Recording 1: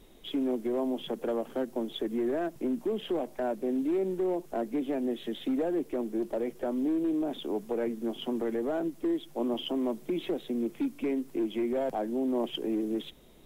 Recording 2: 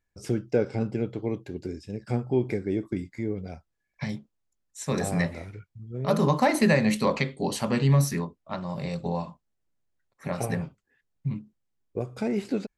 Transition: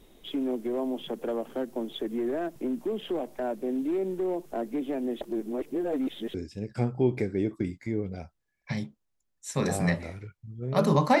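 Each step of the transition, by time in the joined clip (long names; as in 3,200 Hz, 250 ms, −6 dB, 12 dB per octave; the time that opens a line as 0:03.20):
recording 1
0:05.21–0:06.34: reverse
0:06.34: continue with recording 2 from 0:01.66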